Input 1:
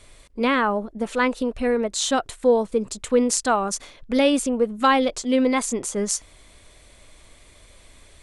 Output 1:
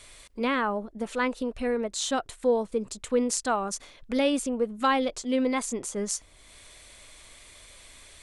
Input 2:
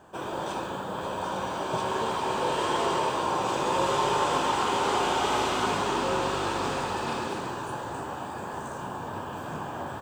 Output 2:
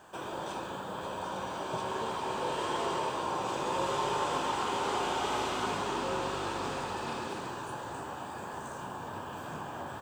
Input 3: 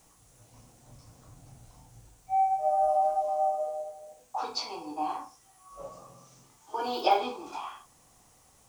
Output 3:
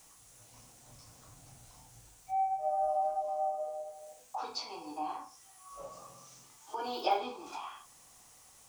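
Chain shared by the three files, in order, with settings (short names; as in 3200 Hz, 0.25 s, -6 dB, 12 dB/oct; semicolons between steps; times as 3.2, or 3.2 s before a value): mismatched tape noise reduction encoder only; gain -6 dB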